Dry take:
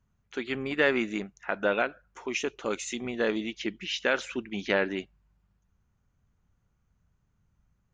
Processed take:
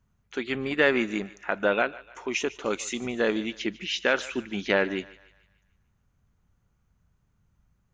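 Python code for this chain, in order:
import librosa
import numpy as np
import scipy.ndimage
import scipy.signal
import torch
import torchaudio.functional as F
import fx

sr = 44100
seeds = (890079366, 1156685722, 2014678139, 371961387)

y = fx.echo_thinned(x, sr, ms=148, feedback_pct=48, hz=540.0, wet_db=-18)
y = y * 10.0 ** (2.5 / 20.0)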